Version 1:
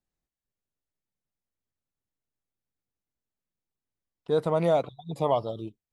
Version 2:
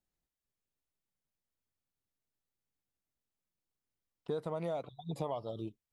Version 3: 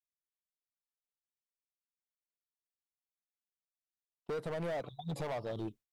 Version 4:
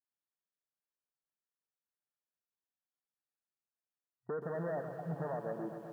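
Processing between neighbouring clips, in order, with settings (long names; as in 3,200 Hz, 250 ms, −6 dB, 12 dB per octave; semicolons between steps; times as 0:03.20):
downward compressor 6 to 1, threshold −32 dBFS, peak gain reduction 13 dB; level −2 dB
downward expander −51 dBFS; hard clipping −38 dBFS, distortion −7 dB; level +4 dB
brick-wall band-pass 120–1,900 Hz; feedback echo at a low word length 128 ms, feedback 80%, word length 11 bits, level −9 dB; level −1 dB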